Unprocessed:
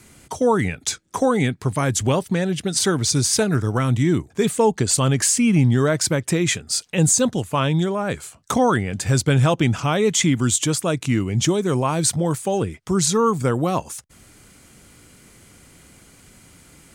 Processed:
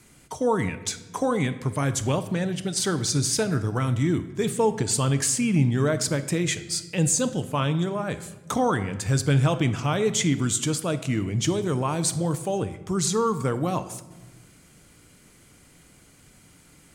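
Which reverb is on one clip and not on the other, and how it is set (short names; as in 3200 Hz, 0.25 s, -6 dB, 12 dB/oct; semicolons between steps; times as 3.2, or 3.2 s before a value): shoebox room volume 700 m³, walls mixed, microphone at 0.44 m; gain -5.5 dB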